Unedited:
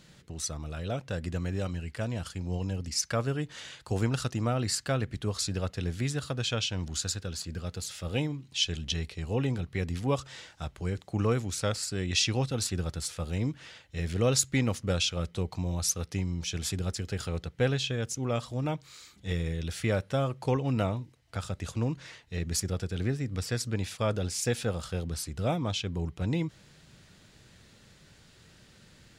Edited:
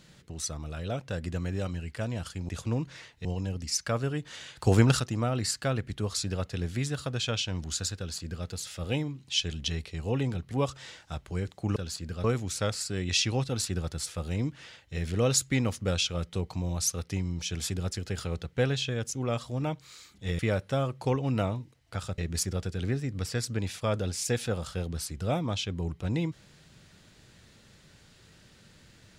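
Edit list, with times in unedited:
3.81–4.24 s: gain +7.5 dB
7.22–7.70 s: copy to 11.26 s
9.75–10.01 s: delete
19.41–19.80 s: delete
21.59–22.35 s: move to 2.49 s

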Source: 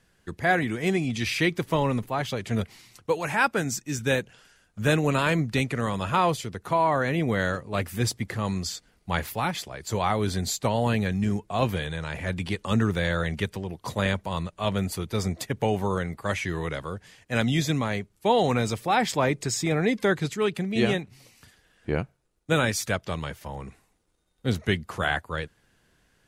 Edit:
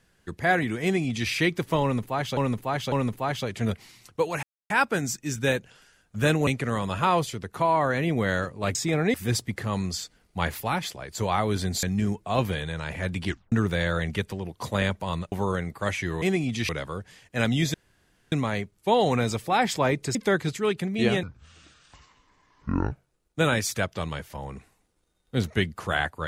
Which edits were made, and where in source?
0.83–1.30 s: copy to 16.65 s
1.82–2.37 s: loop, 3 plays
3.33 s: insert silence 0.27 s
5.10–5.58 s: delete
10.55–11.07 s: delete
12.51 s: tape stop 0.25 s
14.56–15.75 s: delete
17.70 s: insert room tone 0.58 s
19.53–19.92 s: move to 7.86 s
21.00–22.03 s: speed 61%

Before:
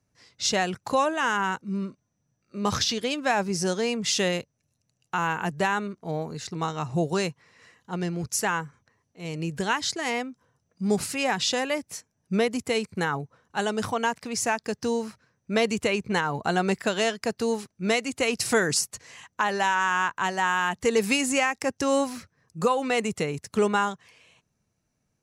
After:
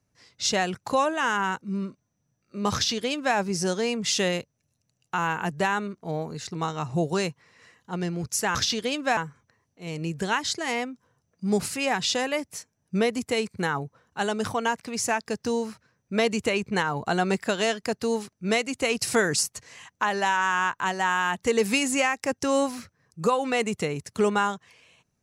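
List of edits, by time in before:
2.74–3.36 s: copy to 8.55 s

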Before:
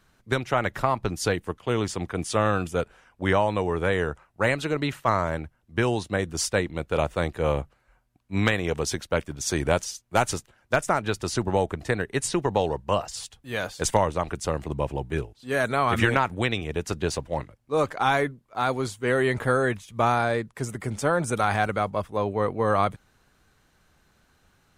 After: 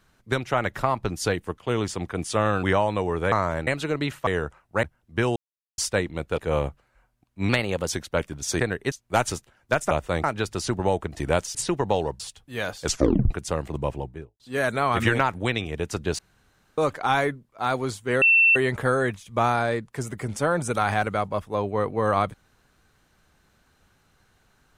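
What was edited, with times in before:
2.63–3.23 s: delete
3.92–4.48 s: swap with 5.08–5.43 s
5.96–6.38 s: mute
6.98–7.31 s: move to 10.92 s
8.42–8.88 s: speed 113%
9.58–9.93 s: swap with 11.88–12.20 s
12.85–13.16 s: delete
13.81 s: tape stop 0.46 s
14.82–15.36 s: studio fade out
17.15–17.74 s: room tone
19.18 s: add tone 2.69 kHz -13.5 dBFS 0.34 s

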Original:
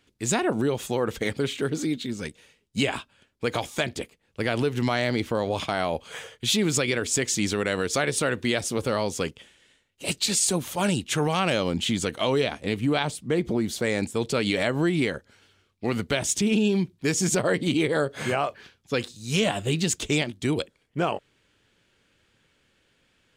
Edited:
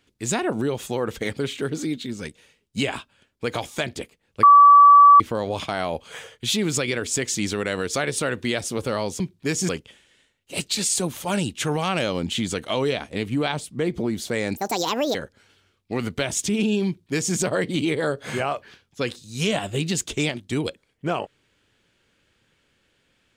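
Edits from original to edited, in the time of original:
4.43–5.20 s: bleep 1.15 kHz -7 dBFS
14.08–15.07 s: speed 172%
16.79–17.28 s: copy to 9.20 s

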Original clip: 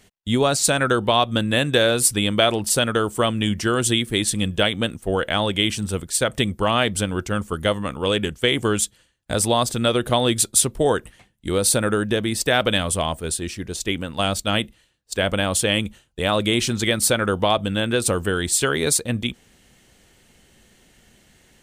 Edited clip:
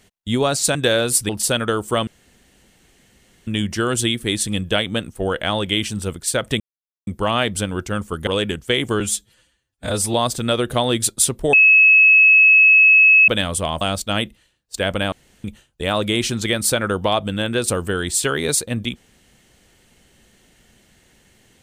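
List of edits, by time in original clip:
0.75–1.65 s: delete
2.19–2.56 s: delete
3.34 s: insert room tone 1.40 s
6.47 s: insert silence 0.47 s
7.67–8.01 s: delete
8.74–9.50 s: stretch 1.5×
10.89–12.64 s: bleep 2.58 kHz -7.5 dBFS
13.17–14.19 s: delete
15.50–15.82 s: room tone

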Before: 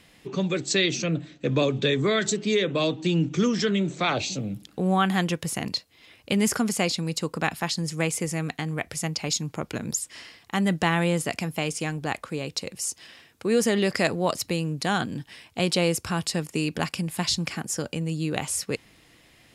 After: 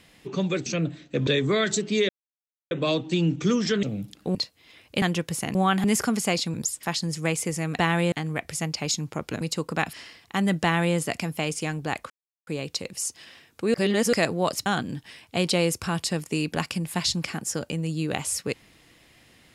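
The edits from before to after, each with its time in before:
0.66–0.96 s: delete
1.57–1.82 s: delete
2.64 s: insert silence 0.62 s
3.76–4.35 s: delete
4.87–5.16 s: swap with 5.69–6.36 s
7.06–7.58 s: swap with 9.83–10.12 s
10.82–11.15 s: copy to 8.54 s
12.29 s: insert silence 0.37 s
13.56–13.95 s: reverse
14.48–14.89 s: delete

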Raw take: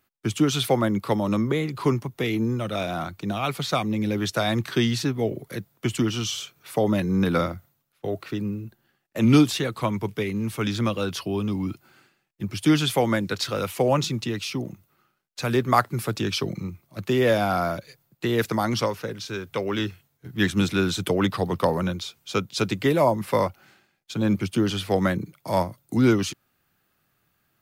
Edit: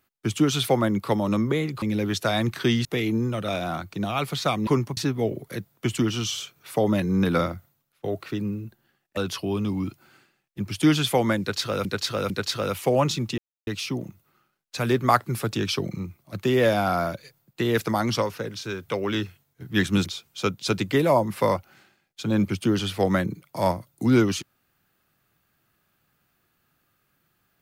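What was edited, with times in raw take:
1.82–2.12 s: swap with 3.94–4.97 s
9.17–11.00 s: delete
13.23–13.68 s: loop, 3 plays
14.31 s: insert silence 0.29 s
20.70–21.97 s: delete

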